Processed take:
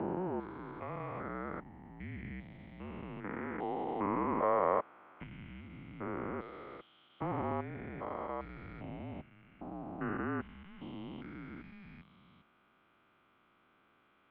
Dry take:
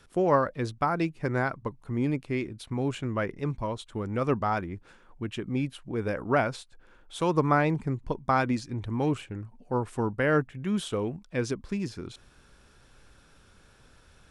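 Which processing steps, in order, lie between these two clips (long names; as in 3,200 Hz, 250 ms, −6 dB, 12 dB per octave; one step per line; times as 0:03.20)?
spectrum averaged block by block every 400 ms
single-sideband voice off tune −190 Hz 340–3,200 Hz
0:03.24–0:05.24: graphic EQ with 10 bands 250 Hz +4 dB, 500 Hz +11 dB, 1,000 Hz +10 dB, 2,000 Hz +6 dB
level −5.5 dB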